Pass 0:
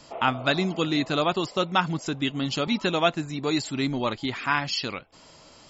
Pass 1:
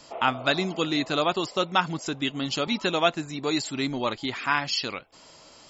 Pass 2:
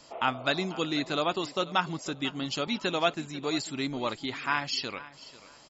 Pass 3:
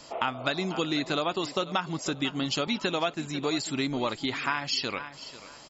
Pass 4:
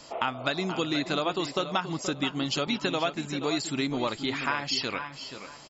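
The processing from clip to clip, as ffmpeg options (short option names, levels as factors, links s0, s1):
-af "bass=f=250:g=-5,treble=f=4000:g=2"
-af "aecho=1:1:493|986:0.126|0.0302,volume=0.631"
-af "acompressor=threshold=0.0316:ratio=6,volume=1.88"
-filter_complex "[0:a]asplit=2[s0][s1];[s1]adelay=478.1,volume=0.316,highshelf=f=4000:g=-10.8[s2];[s0][s2]amix=inputs=2:normalize=0"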